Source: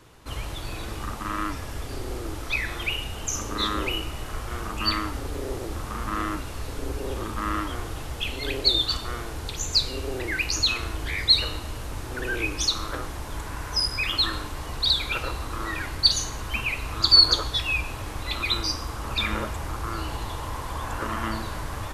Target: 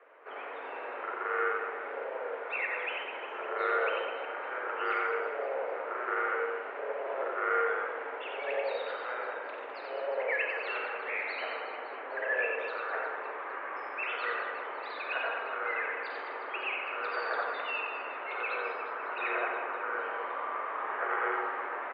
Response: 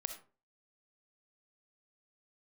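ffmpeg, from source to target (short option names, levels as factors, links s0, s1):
-filter_complex "[0:a]acrusher=bits=4:mode=log:mix=0:aa=0.000001,aecho=1:1:90|207|359.1|556.8|813.9:0.631|0.398|0.251|0.158|0.1[s0];[1:a]atrim=start_sample=2205,asetrate=48510,aresample=44100[s1];[s0][s1]afir=irnorm=-1:irlink=0,highpass=f=240:t=q:w=0.5412,highpass=f=240:t=q:w=1.307,lowpass=f=2200:t=q:w=0.5176,lowpass=f=2200:t=q:w=0.7071,lowpass=f=2200:t=q:w=1.932,afreqshift=150"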